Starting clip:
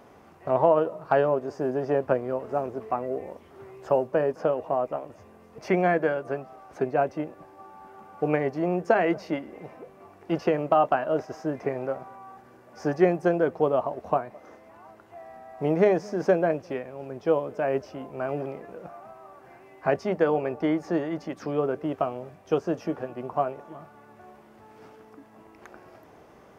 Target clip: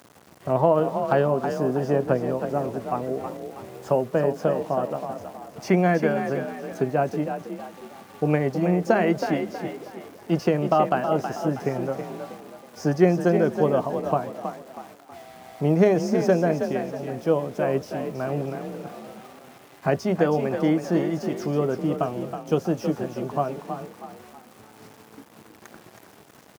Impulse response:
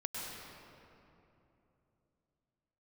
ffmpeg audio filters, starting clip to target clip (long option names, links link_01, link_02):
-filter_complex "[0:a]bass=frequency=250:gain=11,treble=frequency=4000:gain=11,aeval=exprs='val(0)*gte(abs(val(0)),0.00596)':channel_layout=same,highpass=110,asplit=5[link_01][link_02][link_03][link_04][link_05];[link_02]adelay=321,afreqshift=37,volume=-8dB[link_06];[link_03]adelay=642,afreqshift=74,volume=-16.2dB[link_07];[link_04]adelay=963,afreqshift=111,volume=-24.4dB[link_08];[link_05]adelay=1284,afreqshift=148,volume=-32.5dB[link_09];[link_01][link_06][link_07][link_08][link_09]amix=inputs=5:normalize=0"